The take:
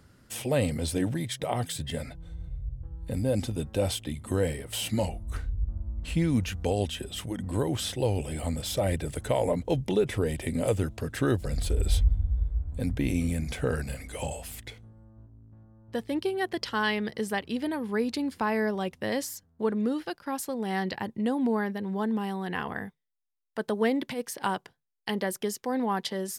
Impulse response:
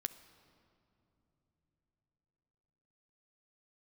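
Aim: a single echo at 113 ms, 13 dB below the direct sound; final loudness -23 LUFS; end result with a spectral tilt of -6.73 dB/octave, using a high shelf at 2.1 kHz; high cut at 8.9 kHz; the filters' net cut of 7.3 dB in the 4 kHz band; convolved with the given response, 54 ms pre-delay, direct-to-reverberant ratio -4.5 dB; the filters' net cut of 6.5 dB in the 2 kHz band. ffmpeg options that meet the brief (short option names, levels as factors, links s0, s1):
-filter_complex "[0:a]lowpass=8900,equalizer=f=2000:t=o:g=-5.5,highshelf=f=2100:g=-4,equalizer=f=4000:t=o:g=-3.5,aecho=1:1:113:0.224,asplit=2[s0][s1];[1:a]atrim=start_sample=2205,adelay=54[s2];[s1][s2]afir=irnorm=-1:irlink=0,volume=2[s3];[s0][s3]amix=inputs=2:normalize=0,volume=1.19"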